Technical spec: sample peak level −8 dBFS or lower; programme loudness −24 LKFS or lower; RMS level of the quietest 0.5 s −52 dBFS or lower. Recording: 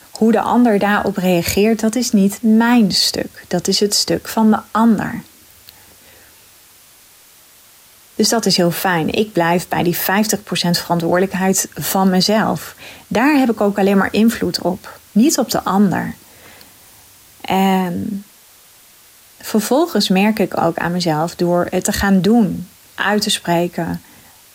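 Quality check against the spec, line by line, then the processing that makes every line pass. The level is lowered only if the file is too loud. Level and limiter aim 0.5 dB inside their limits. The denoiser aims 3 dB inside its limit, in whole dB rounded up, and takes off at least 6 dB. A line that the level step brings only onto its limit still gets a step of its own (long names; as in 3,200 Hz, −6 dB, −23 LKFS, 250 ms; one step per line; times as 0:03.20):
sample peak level −5.0 dBFS: out of spec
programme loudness −15.5 LKFS: out of spec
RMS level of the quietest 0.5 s −46 dBFS: out of spec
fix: level −9 dB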